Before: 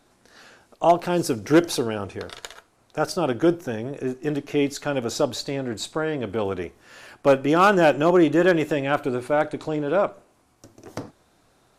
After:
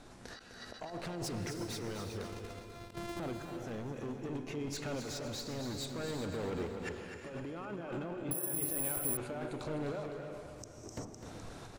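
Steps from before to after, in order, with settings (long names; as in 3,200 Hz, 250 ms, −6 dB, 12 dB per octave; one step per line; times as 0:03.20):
0:02.24–0:03.20: samples sorted by size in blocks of 128 samples
low-pass filter 8,900 Hz 12 dB per octave
low-shelf EQ 150 Hz +8 dB
compressor whose output falls as the input rises −26 dBFS, ratio −1
noise reduction from a noise print of the clip's start 10 dB
hard clipping −25 dBFS, distortion −7 dB
shaped tremolo saw up 0.6 Hz, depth 50%
gate with flip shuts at −43 dBFS, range −25 dB
repeating echo 254 ms, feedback 52%, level −9 dB
reverb whose tail is shaped and stops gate 420 ms rising, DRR 6 dB
0:08.31–0:09.17: bad sample-rate conversion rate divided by 4×, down none, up zero stuff
every ending faded ahead of time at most 120 dB per second
level +15 dB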